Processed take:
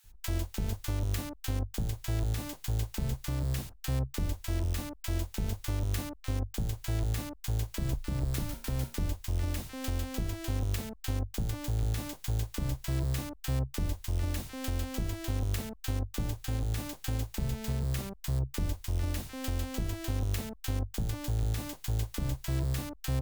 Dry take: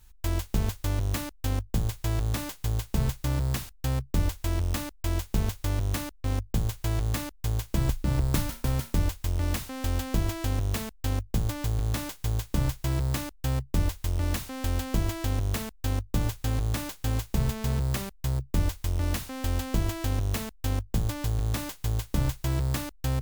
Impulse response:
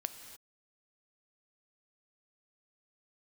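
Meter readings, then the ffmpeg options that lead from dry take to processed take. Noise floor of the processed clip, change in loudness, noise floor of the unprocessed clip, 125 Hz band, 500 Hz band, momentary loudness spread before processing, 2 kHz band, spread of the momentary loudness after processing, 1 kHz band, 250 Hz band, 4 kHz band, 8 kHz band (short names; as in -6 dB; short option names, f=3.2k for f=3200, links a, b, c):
-54 dBFS, -4.5 dB, -52 dBFS, -4.5 dB, -5.0 dB, 3 LU, -5.5 dB, 3 LU, -7.0 dB, -5.0 dB, -4.0 dB, -4.0 dB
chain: -filter_complex "[0:a]bandreject=f=1.1k:w=18,acrossover=split=1100[a][b];[a]adelay=40[c];[c][b]amix=inputs=2:normalize=0,alimiter=limit=-22dB:level=0:latency=1:release=431"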